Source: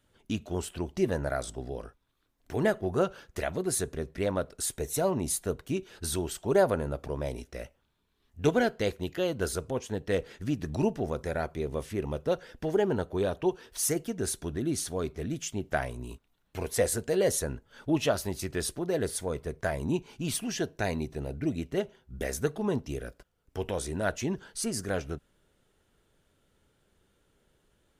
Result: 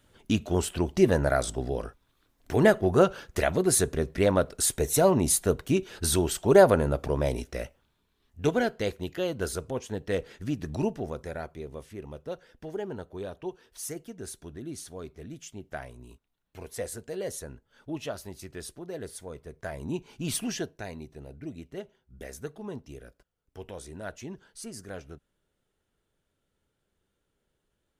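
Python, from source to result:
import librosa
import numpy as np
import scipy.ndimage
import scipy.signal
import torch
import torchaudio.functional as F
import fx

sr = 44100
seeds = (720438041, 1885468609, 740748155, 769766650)

y = fx.gain(x, sr, db=fx.line((7.44, 6.5), (8.42, -0.5), (10.76, -0.5), (11.88, -8.5), (19.48, -8.5), (20.46, 2.5), (20.85, -9.0)))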